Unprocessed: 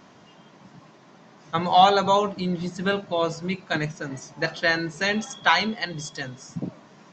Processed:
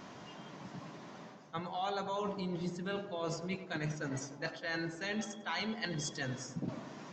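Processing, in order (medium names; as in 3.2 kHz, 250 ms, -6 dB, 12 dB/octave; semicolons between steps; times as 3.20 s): reverse; compression 10:1, threshold -36 dBFS, peak gain reduction 24.5 dB; reverse; tape echo 97 ms, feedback 82%, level -8.5 dB, low-pass 1.3 kHz; trim +1 dB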